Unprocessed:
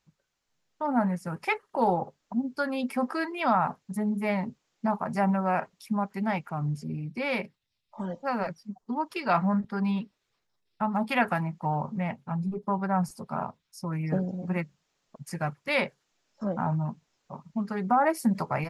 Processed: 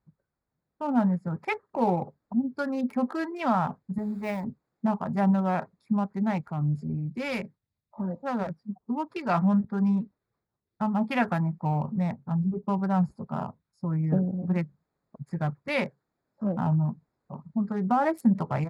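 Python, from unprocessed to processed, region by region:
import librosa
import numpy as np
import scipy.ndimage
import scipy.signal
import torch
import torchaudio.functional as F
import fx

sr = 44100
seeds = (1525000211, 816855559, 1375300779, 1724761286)

y = fx.chain(x, sr, fx.low_shelf(hz=290.0, db=-10.5),
    fx.quant_dither(seeds[0], bits=8, dither='triangular'), at=(3.98, 4.44))
y = fx.chain(y, sr, fx.high_shelf(hz=3900.0, db=10.5),
    fx.tube_stage(drive_db=22.0, bias=0.25), at=(6.43, 7.42))
y = fx.wiener(y, sr, points=15)
y = scipy.signal.sosfilt(scipy.signal.butter(2, 48.0, 'highpass', fs=sr, output='sos'), y)
y = fx.low_shelf(y, sr, hz=270.0, db=9.5)
y = y * librosa.db_to_amplitude(-2.5)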